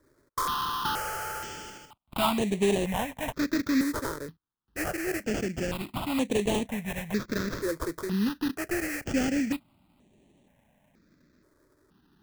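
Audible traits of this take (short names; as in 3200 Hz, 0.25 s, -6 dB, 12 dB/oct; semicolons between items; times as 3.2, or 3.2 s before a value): aliases and images of a low sample rate 2200 Hz, jitter 20%; notches that jump at a steady rate 2.1 Hz 760–5000 Hz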